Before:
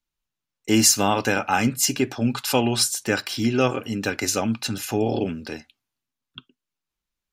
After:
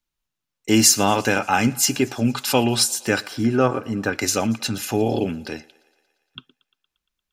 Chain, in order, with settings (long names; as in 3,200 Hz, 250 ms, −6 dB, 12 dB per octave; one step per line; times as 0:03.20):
0:03.26–0:04.13: high shelf with overshoot 2,000 Hz −8 dB, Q 1.5
on a send: feedback echo with a high-pass in the loop 116 ms, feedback 70%, high-pass 310 Hz, level −23.5 dB
on the sum: level +2 dB